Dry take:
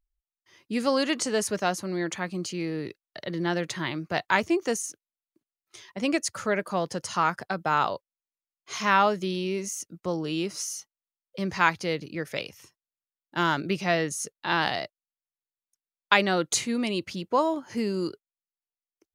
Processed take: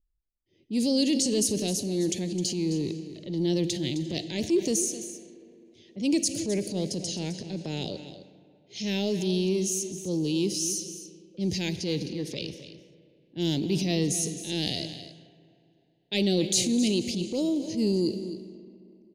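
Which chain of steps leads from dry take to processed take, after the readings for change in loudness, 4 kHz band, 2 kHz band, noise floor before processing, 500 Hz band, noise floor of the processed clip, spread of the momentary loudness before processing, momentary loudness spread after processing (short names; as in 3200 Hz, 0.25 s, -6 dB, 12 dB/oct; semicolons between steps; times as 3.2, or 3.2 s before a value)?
-0.5 dB, +2.0 dB, -13.5 dB, under -85 dBFS, -1.0 dB, -66 dBFS, 11 LU, 14 LU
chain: Chebyshev band-stop 350–4000 Hz, order 2; Schroeder reverb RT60 3.1 s, combs from 33 ms, DRR 15.5 dB; transient shaper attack -6 dB, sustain +5 dB; low-pass opened by the level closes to 1600 Hz, open at -30 dBFS; echo 0.261 s -13 dB; gain +4.5 dB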